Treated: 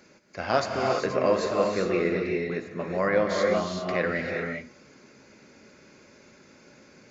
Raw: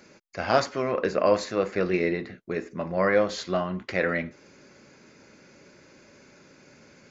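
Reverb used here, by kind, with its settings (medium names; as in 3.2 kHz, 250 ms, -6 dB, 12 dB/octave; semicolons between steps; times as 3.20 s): gated-style reverb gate 420 ms rising, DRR 1 dB; trim -2.5 dB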